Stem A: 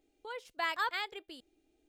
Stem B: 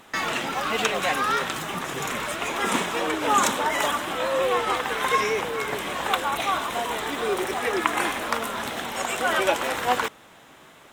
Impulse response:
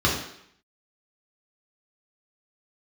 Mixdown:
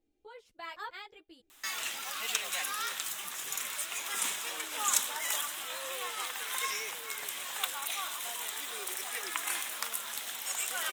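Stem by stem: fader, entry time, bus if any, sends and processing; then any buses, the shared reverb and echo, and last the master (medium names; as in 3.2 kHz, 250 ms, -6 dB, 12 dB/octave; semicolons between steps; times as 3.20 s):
-6.5 dB, 0.00 s, no send, bass shelf 370 Hz +8 dB; three-phase chorus
+0.5 dB, 1.50 s, no send, pre-emphasis filter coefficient 0.97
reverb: none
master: none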